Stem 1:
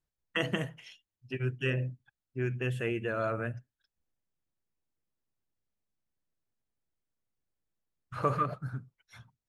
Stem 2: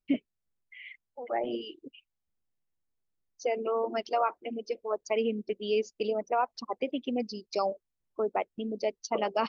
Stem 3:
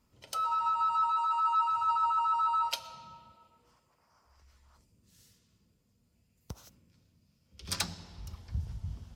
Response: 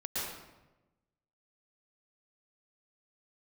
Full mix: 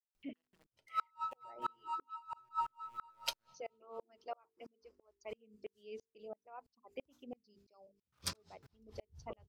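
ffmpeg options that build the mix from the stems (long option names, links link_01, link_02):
-filter_complex "[0:a]acompressor=threshold=-40dB:ratio=10,aeval=exprs='val(0)*gte(abs(val(0)),0.00944)':channel_layout=same,volume=-15.5dB[link_01];[1:a]acompressor=mode=upward:threshold=-30dB:ratio=2.5,adelay=150,volume=-12dB[link_02];[2:a]aeval=exprs='val(0)*pow(10,-25*(0.5-0.5*cos(2*PI*4.4*n/s))/20)':channel_layout=same,adelay=550,volume=2.5dB[link_03];[link_01][link_02][link_03]amix=inputs=3:normalize=0,bandreject=frequency=50:width_type=h:width=6,bandreject=frequency=100:width_type=h:width=6,bandreject=frequency=150:width_type=h:width=6,bandreject=frequency=200:width_type=h:width=6,bandreject=frequency=250:width_type=h:width=6,bandreject=frequency=300:width_type=h:width=6,bandreject=frequency=350:width_type=h:width=6,bandreject=frequency=400:width_type=h:width=6,bandreject=frequency=450:width_type=h:width=6,aeval=exprs='val(0)*pow(10,-36*if(lt(mod(-3*n/s,1),2*abs(-3)/1000),1-mod(-3*n/s,1)/(2*abs(-3)/1000),(mod(-3*n/s,1)-2*abs(-3)/1000)/(1-2*abs(-3)/1000))/20)':channel_layout=same"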